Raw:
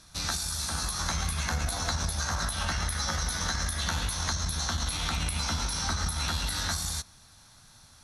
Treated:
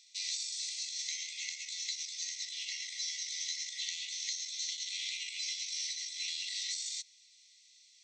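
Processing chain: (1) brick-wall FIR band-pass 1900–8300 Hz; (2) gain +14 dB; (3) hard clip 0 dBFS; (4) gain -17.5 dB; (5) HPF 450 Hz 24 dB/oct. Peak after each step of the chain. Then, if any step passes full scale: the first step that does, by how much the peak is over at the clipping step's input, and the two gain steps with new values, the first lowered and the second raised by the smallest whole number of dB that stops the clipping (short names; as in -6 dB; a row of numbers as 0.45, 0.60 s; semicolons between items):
-18.0, -4.0, -4.0, -21.5, -22.0 dBFS; no overload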